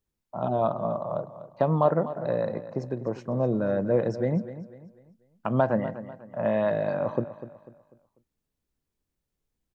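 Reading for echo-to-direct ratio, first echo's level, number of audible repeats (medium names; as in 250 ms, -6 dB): -13.0 dB, -13.5 dB, 3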